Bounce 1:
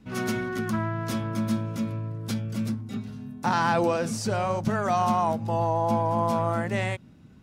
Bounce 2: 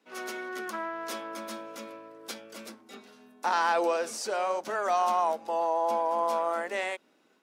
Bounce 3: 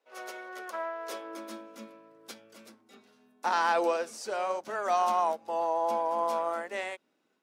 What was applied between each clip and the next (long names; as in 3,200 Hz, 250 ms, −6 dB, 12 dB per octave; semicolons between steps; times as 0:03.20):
high-pass filter 380 Hz 24 dB per octave; automatic gain control gain up to 4 dB; level −5.5 dB
high-pass filter sweep 540 Hz → 86 Hz, 0:00.95–0:02.58; expander for the loud parts 1.5 to 1, over −42 dBFS